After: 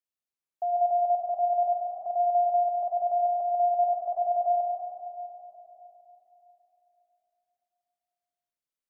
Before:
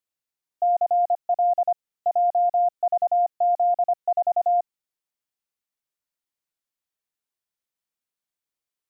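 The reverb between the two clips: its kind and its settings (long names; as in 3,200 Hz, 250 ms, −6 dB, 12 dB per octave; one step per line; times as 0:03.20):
comb and all-pass reverb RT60 3.5 s, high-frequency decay 0.3×, pre-delay 60 ms, DRR 1.5 dB
level −8 dB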